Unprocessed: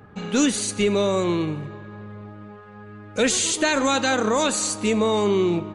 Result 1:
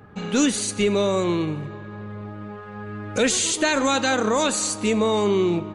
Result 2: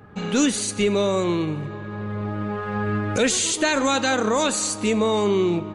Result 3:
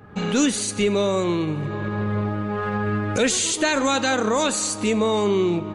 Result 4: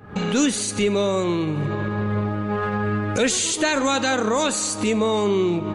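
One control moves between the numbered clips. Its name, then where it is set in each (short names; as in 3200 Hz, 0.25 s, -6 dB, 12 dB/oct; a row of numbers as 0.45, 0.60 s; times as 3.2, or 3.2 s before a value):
recorder AGC, rising by: 5.1, 14, 35, 86 dB/s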